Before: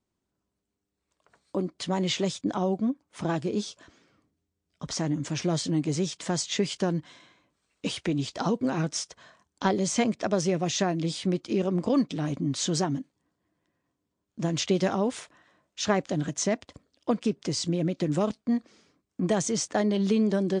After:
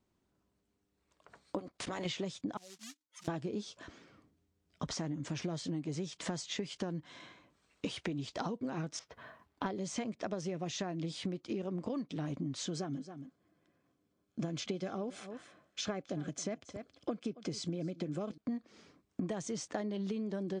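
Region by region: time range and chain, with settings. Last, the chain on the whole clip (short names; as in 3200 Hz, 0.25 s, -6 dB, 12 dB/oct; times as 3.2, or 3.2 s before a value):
1.58–2.05 spectral limiter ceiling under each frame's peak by 20 dB + level quantiser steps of 20 dB
2.57–3.28 spectral contrast raised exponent 2.7 + short-mantissa float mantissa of 2-bit + band-pass 6600 Hz, Q 1.4
8.99–9.66 LPF 2300 Hz + companded quantiser 8-bit + notch comb 180 Hz
12.66–18.38 notch comb 930 Hz + echo 0.273 s -21 dB
whole clip: compressor 16:1, threshold -38 dBFS; high shelf 6200 Hz -8 dB; gain +4 dB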